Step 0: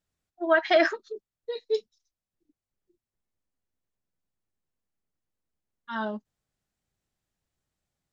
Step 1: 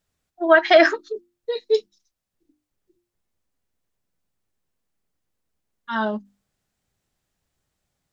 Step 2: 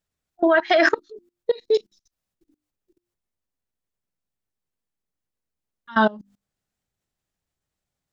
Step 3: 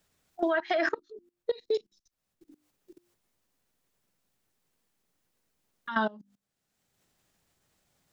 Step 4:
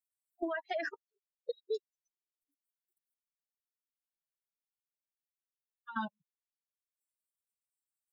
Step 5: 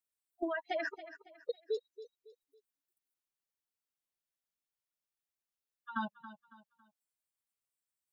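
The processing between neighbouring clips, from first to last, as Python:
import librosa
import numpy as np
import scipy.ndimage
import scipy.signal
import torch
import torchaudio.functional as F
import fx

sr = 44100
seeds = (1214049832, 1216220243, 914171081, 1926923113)

y1 = fx.hum_notches(x, sr, base_hz=50, count=7)
y1 = y1 * librosa.db_to_amplitude(7.5)
y2 = fx.level_steps(y1, sr, step_db=23)
y2 = y2 * librosa.db_to_amplitude(7.5)
y3 = fx.band_squash(y2, sr, depth_pct=70)
y3 = y3 * librosa.db_to_amplitude(-9.0)
y4 = fx.bin_expand(y3, sr, power=3.0)
y4 = y4 * librosa.db_to_amplitude(-5.0)
y5 = fx.echo_feedback(y4, sr, ms=277, feedback_pct=35, wet_db=-14.5)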